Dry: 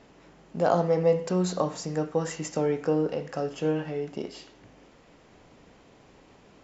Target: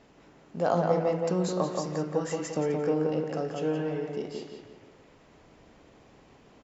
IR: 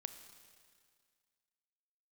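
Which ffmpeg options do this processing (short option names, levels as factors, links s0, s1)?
-filter_complex "[0:a]asplit=2[s0][s1];[s1]adelay=174,lowpass=f=2800:p=1,volume=0.708,asplit=2[s2][s3];[s3]adelay=174,lowpass=f=2800:p=1,volume=0.46,asplit=2[s4][s5];[s5]adelay=174,lowpass=f=2800:p=1,volume=0.46,asplit=2[s6][s7];[s7]adelay=174,lowpass=f=2800:p=1,volume=0.46,asplit=2[s8][s9];[s9]adelay=174,lowpass=f=2800:p=1,volume=0.46,asplit=2[s10][s11];[s11]adelay=174,lowpass=f=2800:p=1,volume=0.46[s12];[s0][s2][s4][s6][s8][s10][s12]amix=inputs=7:normalize=0,volume=0.708"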